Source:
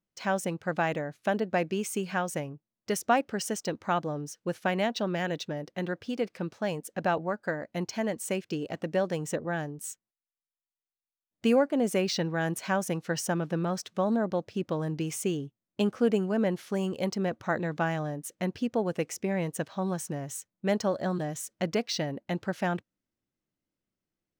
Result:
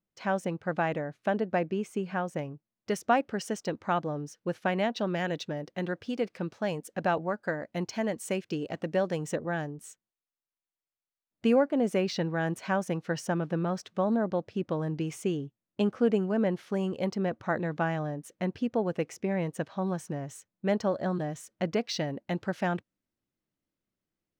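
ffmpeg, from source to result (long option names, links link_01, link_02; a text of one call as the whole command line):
ffmpeg -i in.wav -af "asetnsamples=nb_out_samples=441:pad=0,asendcmd='1.59 lowpass f 1300;2.39 lowpass f 3400;4.99 lowpass f 6500;9.67 lowpass f 2800;21.84 lowpass f 5600',lowpass=frequency=2300:poles=1" out.wav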